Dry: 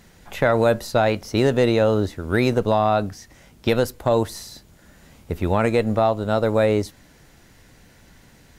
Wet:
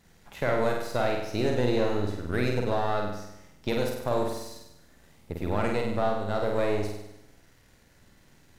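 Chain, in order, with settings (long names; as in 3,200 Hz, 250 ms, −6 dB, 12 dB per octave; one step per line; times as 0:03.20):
gain on one half-wave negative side −7 dB
flutter between parallel walls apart 8.4 metres, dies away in 0.86 s
level −8 dB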